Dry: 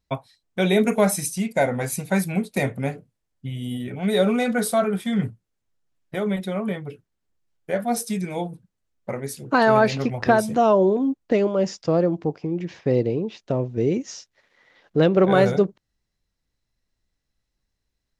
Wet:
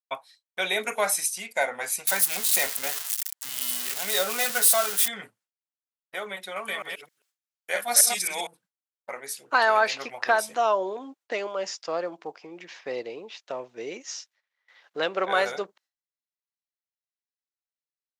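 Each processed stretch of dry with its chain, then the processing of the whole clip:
2.07–5.08 s: zero-crossing glitches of -15.5 dBFS + band-stop 2.3 kHz, Q 16
6.56–8.47 s: chunks repeated in reverse 132 ms, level -3.5 dB + treble shelf 2.2 kHz +11.5 dB
whole clip: gate with hold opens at -47 dBFS; high-pass 940 Hz 12 dB/octave; trim +1.5 dB

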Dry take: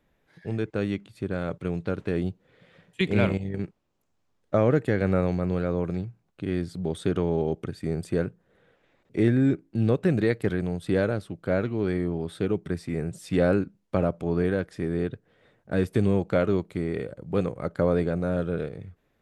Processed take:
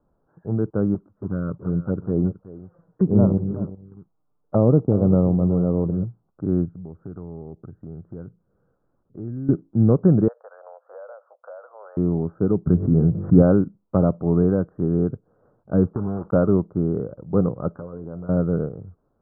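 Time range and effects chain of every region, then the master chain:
0.94–6.04 s: block-companded coder 5-bit + touch-sensitive flanger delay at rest 6.9 ms, full sweep at -22 dBFS + delay 374 ms -14 dB
6.65–9.49 s: peaking EQ 690 Hz -10 dB 2.8 oct + compression 2:1, threshold -39 dBFS
10.28–11.97 s: Chebyshev band-pass 510–1800 Hz, order 5 + compression 5:1, threshold -39 dBFS
12.67–13.42 s: bass shelf 290 Hz +7.5 dB + de-hum 48.07 Hz, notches 23 + swell ahead of each attack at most 78 dB/s
15.86–16.33 s: block-companded coder 3-bit + compression 5:1, threshold -27 dBFS
17.73–18.29 s: compression, threshold -35 dBFS + doubling 12 ms -7 dB + de-hum 133.3 Hz, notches 29
whole clip: steep low-pass 1.4 kHz 72 dB/octave; dynamic bell 170 Hz, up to +7 dB, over -36 dBFS, Q 0.75; trim +2 dB

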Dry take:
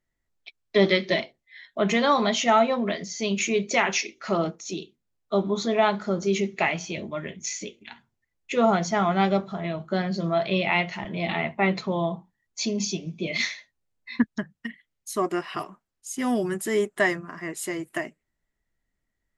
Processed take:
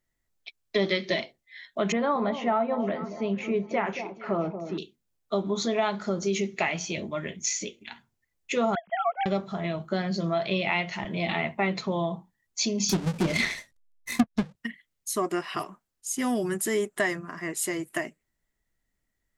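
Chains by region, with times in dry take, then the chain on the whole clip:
1.92–4.78 s: low-pass 1.4 kHz + echo whose repeats swap between lows and highs 228 ms, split 930 Hz, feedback 53%, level -11.5 dB
8.75–9.26 s: formants replaced by sine waves + upward expansion 2.5:1, over -32 dBFS
12.89–14.56 s: square wave that keeps the level + low-pass that closes with the level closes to 1.7 kHz, closed at -15.5 dBFS + bass shelf 490 Hz +7.5 dB
whole clip: compression 2.5:1, threshold -24 dBFS; treble shelf 5.8 kHz +6.5 dB

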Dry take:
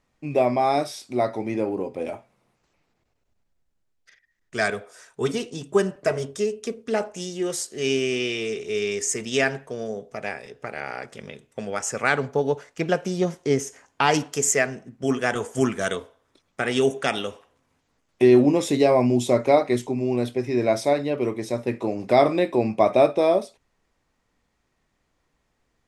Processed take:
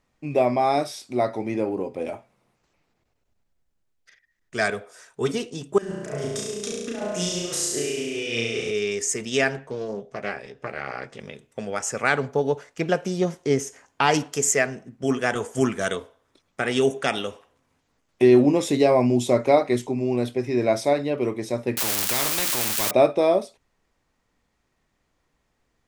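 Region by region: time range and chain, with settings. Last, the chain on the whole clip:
5.78–8.71 s: hum notches 50/100/150/200/250/300/350/400 Hz + compressor with a negative ratio -32 dBFS + flutter echo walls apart 5.9 m, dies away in 1.2 s
9.56–11.20 s: distance through air 53 m + doubling 15 ms -7 dB + loudspeaker Doppler distortion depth 0.21 ms
21.77–22.91 s: zero-crossing glitches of -21 dBFS + spectrum-flattening compressor 4:1
whole clip: none

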